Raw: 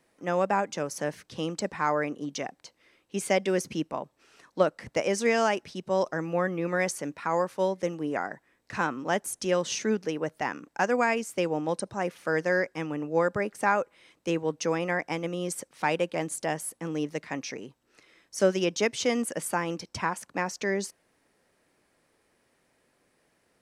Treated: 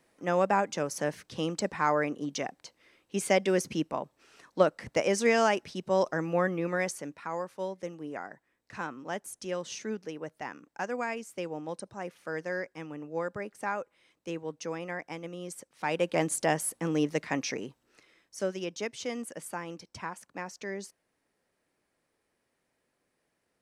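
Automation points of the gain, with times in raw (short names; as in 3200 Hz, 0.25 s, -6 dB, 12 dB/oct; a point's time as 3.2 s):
6.47 s 0 dB
7.38 s -8.5 dB
15.74 s -8.5 dB
16.15 s +3 dB
17.63 s +3 dB
18.46 s -9 dB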